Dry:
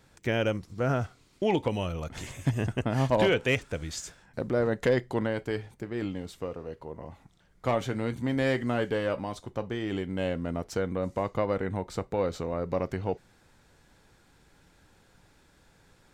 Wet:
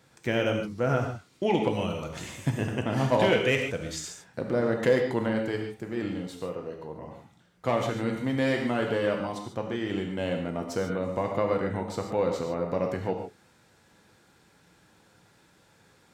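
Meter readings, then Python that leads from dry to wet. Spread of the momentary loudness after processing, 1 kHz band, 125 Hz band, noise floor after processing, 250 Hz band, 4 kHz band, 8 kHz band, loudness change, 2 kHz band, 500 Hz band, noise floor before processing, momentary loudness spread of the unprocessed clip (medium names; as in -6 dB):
12 LU, +2.0 dB, -0.5 dB, -62 dBFS, +2.0 dB, +2.0 dB, +2.0 dB, +1.5 dB, +1.5 dB, +2.0 dB, -62 dBFS, 11 LU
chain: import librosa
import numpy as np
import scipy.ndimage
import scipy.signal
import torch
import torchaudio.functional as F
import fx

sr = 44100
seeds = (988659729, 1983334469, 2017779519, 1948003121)

y = scipy.signal.sosfilt(scipy.signal.butter(2, 100.0, 'highpass', fs=sr, output='sos'), x)
y = fx.rev_gated(y, sr, seeds[0], gate_ms=170, shape='flat', drr_db=2.5)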